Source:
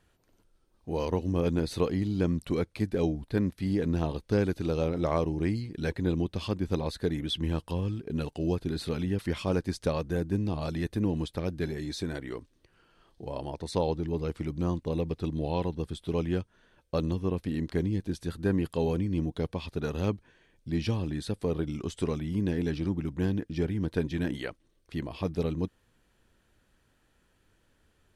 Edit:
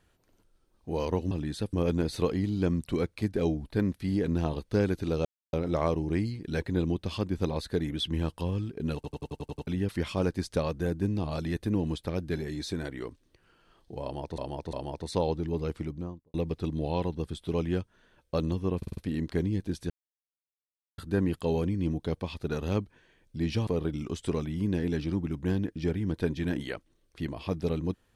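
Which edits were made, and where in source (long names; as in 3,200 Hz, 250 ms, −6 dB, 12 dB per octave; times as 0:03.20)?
0:04.83: splice in silence 0.28 s
0:08.25: stutter in place 0.09 s, 8 plays
0:13.33–0:13.68: repeat, 3 plays
0:14.29–0:14.94: fade out and dull
0:17.37: stutter 0.05 s, 5 plays
0:18.30: splice in silence 1.08 s
0:20.99–0:21.41: move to 0:01.31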